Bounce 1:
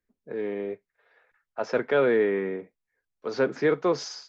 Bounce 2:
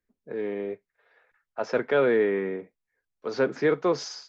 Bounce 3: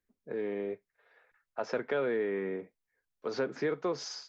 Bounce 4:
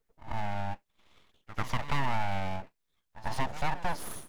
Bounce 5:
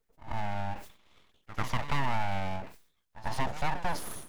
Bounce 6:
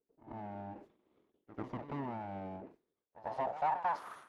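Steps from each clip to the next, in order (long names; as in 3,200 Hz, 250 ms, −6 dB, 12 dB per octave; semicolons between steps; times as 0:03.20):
no processing that can be heard
downward compressor 2.5 to 1, threshold −29 dBFS, peak gain reduction 8 dB; level −2 dB
full-wave rectification; backwards echo 93 ms −14.5 dB; level +4 dB
level that may fall only so fast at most 120 dB per second
band-pass filter sweep 340 Hz → 1,300 Hz, 0:02.79–0:04.19; level +3.5 dB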